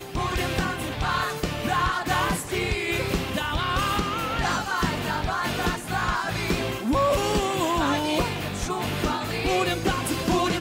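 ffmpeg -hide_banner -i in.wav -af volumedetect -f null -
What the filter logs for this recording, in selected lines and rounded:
mean_volume: -25.4 dB
max_volume: -12.7 dB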